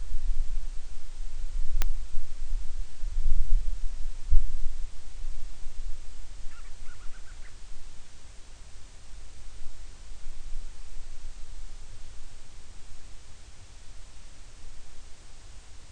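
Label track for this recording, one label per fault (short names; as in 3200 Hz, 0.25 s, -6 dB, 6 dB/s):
1.820000	1.820000	pop -8 dBFS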